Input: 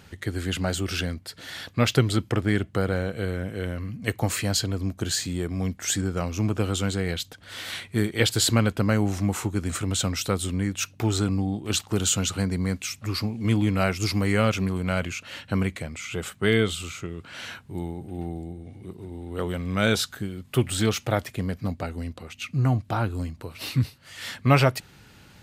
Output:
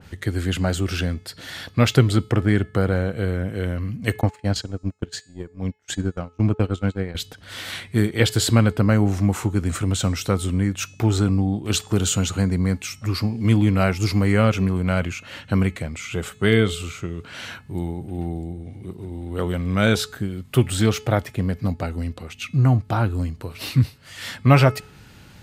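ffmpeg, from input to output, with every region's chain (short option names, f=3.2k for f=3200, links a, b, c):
-filter_complex "[0:a]asettb=1/sr,asplit=3[a][b][c];[a]atrim=end=4.214[d];[b]atrim=start=4.21:end=7.15,asetpts=PTS-STARTPTS,afade=t=in:d=0.004:c=qsin,afade=t=out:st=2.936:d=0.004:c=qsin,agate=range=-33dB:threshold=-26dB:ratio=16:release=100:detection=peak,aemphasis=mode=reproduction:type=50fm[e];[c]atrim=start=7.146[f];[d][e]acrossfade=d=0.004:c1=hsin:c2=qsin[g];[g][f]acrossfade=d=0.004:c1=qsin:c2=hsin,lowshelf=f=190:g=4,bandreject=f=428.9:t=h:w=4,bandreject=f=857.8:t=h:w=4,bandreject=f=1.2867k:t=h:w=4,bandreject=f=1.7156k:t=h:w=4,bandreject=f=2.1445k:t=h:w=4,bandreject=f=2.5734k:t=h:w=4,bandreject=f=3.0023k:t=h:w=4,bandreject=f=3.4312k:t=h:w=4,bandreject=f=3.8601k:t=h:w=4,bandreject=f=4.289k:t=h:w=4,bandreject=f=4.7179k:t=h:w=4,bandreject=f=5.1468k:t=h:w=4,bandreject=f=5.5757k:t=h:w=4,bandreject=f=6.0046k:t=h:w=4,bandreject=f=6.4335k:t=h:w=4,bandreject=f=6.8624k:t=h:w=4,bandreject=f=7.2913k:t=h:w=4,bandreject=f=7.7202k:t=h:w=4,bandreject=f=8.1491k:t=h:w=4,bandreject=f=8.578k:t=h:w=4,bandreject=f=9.0069k:t=h:w=4,bandreject=f=9.4358k:t=h:w=4,bandreject=f=9.8647k:t=h:w=4,adynamicequalizer=threshold=0.00794:dfrequency=2400:dqfactor=0.7:tfrequency=2400:tqfactor=0.7:attack=5:release=100:ratio=0.375:range=2.5:mode=cutabove:tftype=highshelf,volume=3dB"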